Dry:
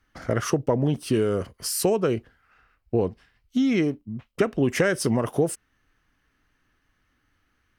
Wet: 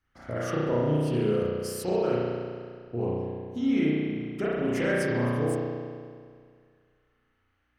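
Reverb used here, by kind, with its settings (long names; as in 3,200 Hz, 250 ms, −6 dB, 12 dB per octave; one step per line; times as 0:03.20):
spring reverb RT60 2 s, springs 33 ms, chirp 35 ms, DRR −8.5 dB
level −12 dB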